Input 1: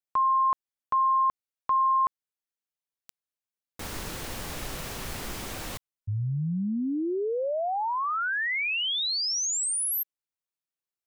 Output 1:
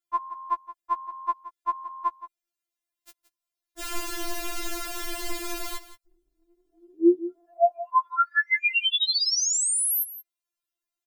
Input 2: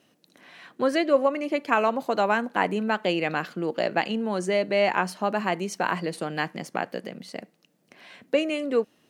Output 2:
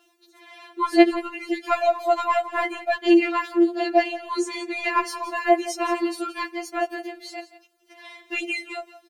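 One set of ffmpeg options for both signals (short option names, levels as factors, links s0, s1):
-af "acontrast=46,aecho=1:1:172:0.178,afftfilt=real='re*4*eq(mod(b,16),0)':imag='im*4*eq(mod(b,16),0)':win_size=2048:overlap=0.75"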